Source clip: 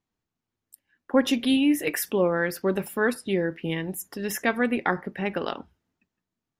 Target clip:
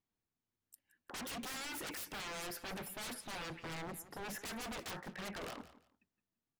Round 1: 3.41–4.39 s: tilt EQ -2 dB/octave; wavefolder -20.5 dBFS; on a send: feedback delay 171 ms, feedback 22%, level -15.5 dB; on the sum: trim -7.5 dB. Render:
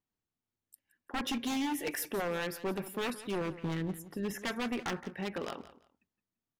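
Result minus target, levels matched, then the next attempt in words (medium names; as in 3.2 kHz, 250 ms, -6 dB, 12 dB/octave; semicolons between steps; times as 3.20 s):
wavefolder: distortion -20 dB
3.41–4.39 s: tilt EQ -2 dB/octave; wavefolder -31.5 dBFS; on a send: feedback delay 171 ms, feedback 22%, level -15.5 dB; on the sum: trim -7.5 dB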